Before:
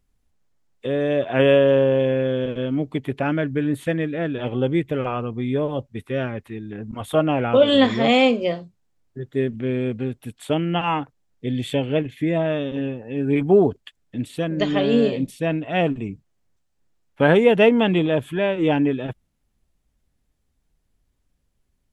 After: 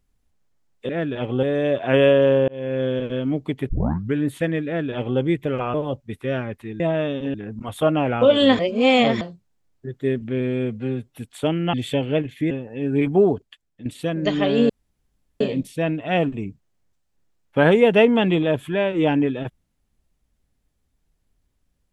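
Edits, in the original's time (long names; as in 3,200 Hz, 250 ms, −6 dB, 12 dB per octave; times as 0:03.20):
0:01.94–0:02.30: fade in
0:03.15: tape start 0.45 s
0:04.12–0:04.66: duplicate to 0:00.89
0:05.20–0:05.60: remove
0:07.91–0:08.53: reverse
0:09.72–0:10.23: time-stretch 1.5×
0:10.80–0:11.54: remove
0:12.31–0:12.85: move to 0:06.66
0:13.39–0:14.20: fade out, to −10.5 dB
0:15.04: splice in room tone 0.71 s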